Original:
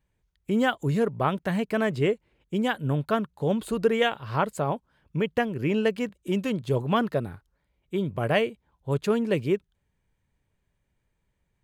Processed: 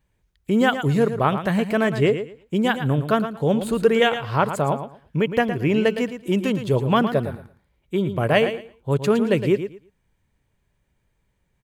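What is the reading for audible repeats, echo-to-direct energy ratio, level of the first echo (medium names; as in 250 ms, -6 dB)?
2, -10.0 dB, -10.0 dB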